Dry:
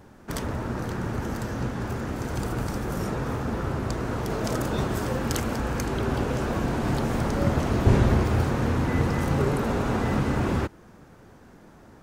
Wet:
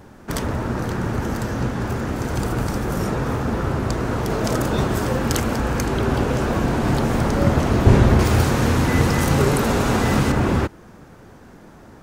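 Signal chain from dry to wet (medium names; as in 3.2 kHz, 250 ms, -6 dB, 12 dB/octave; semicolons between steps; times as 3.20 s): 8.19–10.32 s: treble shelf 3 kHz +9.5 dB; trim +6 dB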